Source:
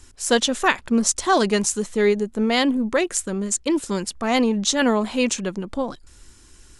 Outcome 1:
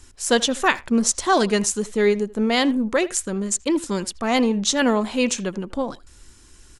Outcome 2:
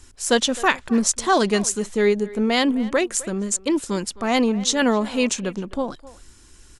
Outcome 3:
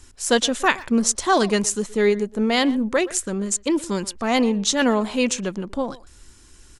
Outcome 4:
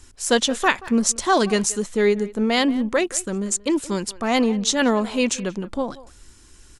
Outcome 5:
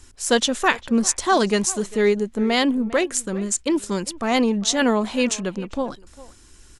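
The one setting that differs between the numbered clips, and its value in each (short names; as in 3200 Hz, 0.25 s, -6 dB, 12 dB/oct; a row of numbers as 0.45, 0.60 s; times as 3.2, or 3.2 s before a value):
speakerphone echo, time: 80, 260, 120, 180, 400 ms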